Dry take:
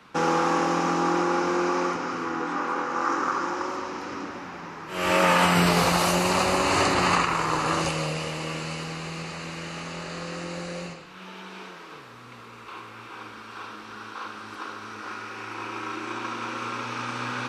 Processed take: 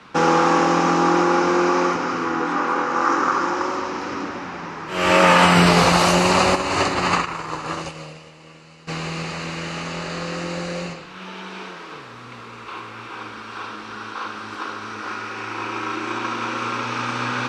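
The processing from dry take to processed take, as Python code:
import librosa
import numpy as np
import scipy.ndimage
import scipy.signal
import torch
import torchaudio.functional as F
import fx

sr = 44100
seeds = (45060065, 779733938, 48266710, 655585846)

y = scipy.signal.sosfilt(scipy.signal.butter(2, 7900.0, 'lowpass', fs=sr, output='sos'), x)
y = fx.upward_expand(y, sr, threshold_db=-32.0, expansion=2.5, at=(6.54, 8.87), fade=0.02)
y = y * librosa.db_to_amplitude(6.5)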